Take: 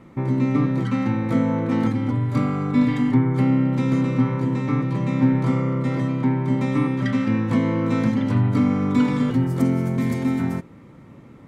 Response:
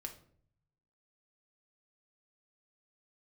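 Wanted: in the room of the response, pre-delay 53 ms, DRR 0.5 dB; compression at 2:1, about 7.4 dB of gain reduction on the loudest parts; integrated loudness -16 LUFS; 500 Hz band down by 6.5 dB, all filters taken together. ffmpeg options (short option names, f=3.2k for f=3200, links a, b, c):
-filter_complex "[0:a]equalizer=f=500:t=o:g=-8.5,acompressor=threshold=-29dB:ratio=2,asplit=2[a][b];[1:a]atrim=start_sample=2205,adelay=53[c];[b][c]afir=irnorm=-1:irlink=0,volume=2.5dB[d];[a][d]amix=inputs=2:normalize=0,volume=8.5dB"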